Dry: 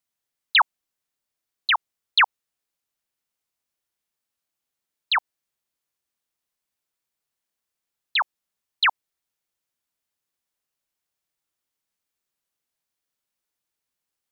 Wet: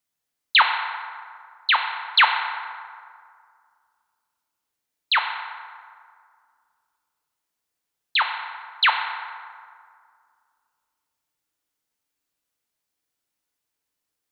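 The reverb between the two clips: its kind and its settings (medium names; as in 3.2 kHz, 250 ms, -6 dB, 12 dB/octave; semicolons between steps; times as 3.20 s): FDN reverb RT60 2.1 s, low-frequency decay 0.9×, high-frequency decay 0.5×, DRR 3 dB; trim +1 dB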